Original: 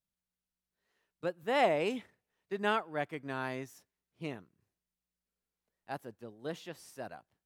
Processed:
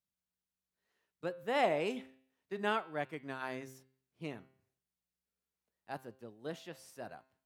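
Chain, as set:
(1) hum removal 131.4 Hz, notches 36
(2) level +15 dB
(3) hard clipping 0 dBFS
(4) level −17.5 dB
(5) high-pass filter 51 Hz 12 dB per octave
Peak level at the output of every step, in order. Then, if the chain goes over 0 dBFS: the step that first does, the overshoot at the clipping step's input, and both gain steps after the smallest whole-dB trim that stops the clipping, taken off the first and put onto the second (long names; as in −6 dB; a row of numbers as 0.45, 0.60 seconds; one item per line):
−16.5, −1.5, −1.5, −19.0, −19.0 dBFS
no step passes full scale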